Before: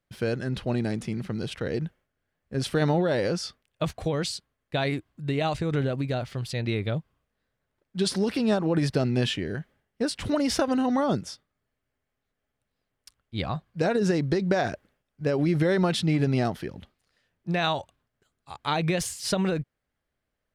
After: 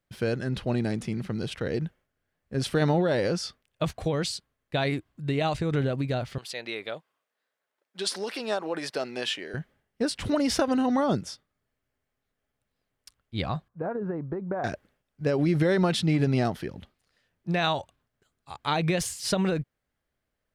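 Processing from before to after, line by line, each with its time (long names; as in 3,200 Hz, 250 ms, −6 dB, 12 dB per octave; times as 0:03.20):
0:06.38–0:09.54: high-pass filter 530 Hz
0:13.68–0:14.64: transistor ladder low-pass 1,400 Hz, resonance 40%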